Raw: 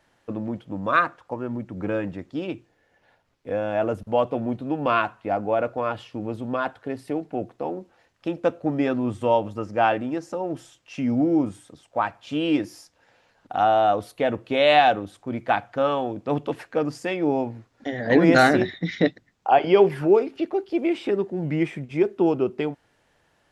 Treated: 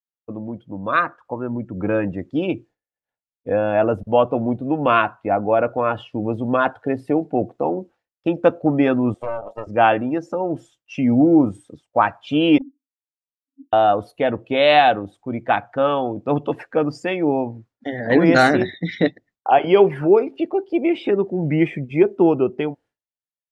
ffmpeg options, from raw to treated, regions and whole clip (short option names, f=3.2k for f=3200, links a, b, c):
-filter_complex "[0:a]asettb=1/sr,asplit=3[a][b][c];[a]atrim=end=9.144[d];[b]atrim=start=9.14:end=9.67,asetpts=PTS-STARTPTS,afade=t=in:d=0.004:c=qsin,afade=t=out:st=0.526:d=0.004:c=qsin,highpass=f=630:t=q:w=4.4,acompressor=threshold=-23dB:ratio=16:attack=3.2:release=140:knee=1:detection=peak,aeval=exprs='(tanh(20*val(0)+0.75)-tanh(0.75))/20':c=same[e];[c]atrim=start=9.666[f];[d][e]acrossfade=d=0.004:c1=hsin:c2=qsin[g];[g][f]acrossfade=d=0.004:c1=qsin:c2=hsin,asettb=1/sr,asplit=3[h][i][j];[h]atrim=end=12.584[k];[i]atrim=start=12.58:end=13.73,asetpts=PTS-STARTPTS,afade=t=in:d=0.004:c=qsin,afade=t=out:st=1.146:d=0.004:c=qsin,asuperpass=centerf=270:order=8:qfactor=7.4,aeval=exprs='clip(val(0),-1,0.02)':c=same[l];[j]atrim=start=13.726[m];[k][l]acrossfade=d=0.004:c1=hsin:c2=qsin[n];[n][m]acrossfade=d=0.004:c1=qsin:c2=hsin,agate=range=-33dB:threshold=-47dB:ratio=3:detection=peak,afftdn=nr=15:nf=-43,dynaudnorm=f=140:g=17:m=11.5dB,volume=-1dB"